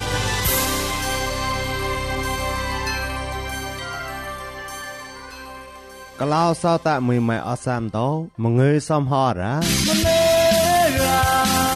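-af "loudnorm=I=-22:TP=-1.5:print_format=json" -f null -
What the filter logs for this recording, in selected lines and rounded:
"input_i" : "-19.4",
"input_tp" : "-7.6",
"input_lra" : "9.1",
"input_thresh" : "-30.0",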